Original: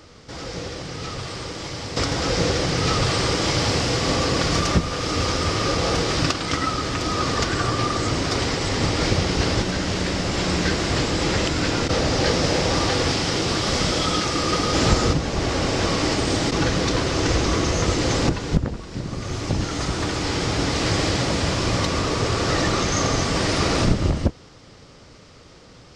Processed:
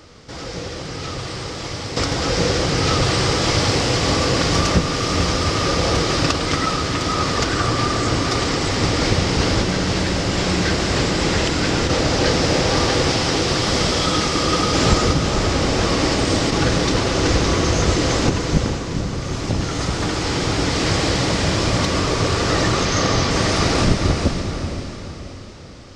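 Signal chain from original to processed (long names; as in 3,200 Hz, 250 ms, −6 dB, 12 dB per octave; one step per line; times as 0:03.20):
0:22.85–0:23.31: high shelf with overshoot 6,700 Hz −7.5 dB, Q 1.5
feedback delay with all-pass diffusion 465 ms, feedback 44%, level −6.5 dB
level +2 dB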